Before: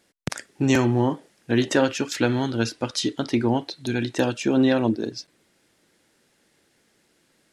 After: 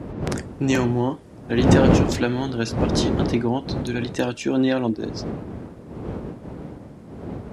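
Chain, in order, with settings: wind noise 300 Hz -23 dBFS; HPF 60 Hz; gain -1 dB

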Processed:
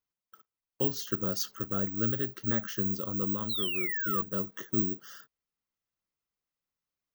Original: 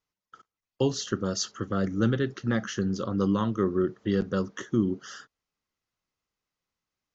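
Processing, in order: painted sound fall, 3.49–4.22, 1100–4200 Hz -23 dBFS; careless resampling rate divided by 2×, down none, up zero stuff; vocal rider within 4 dB 0.5 s; gain -9 dB

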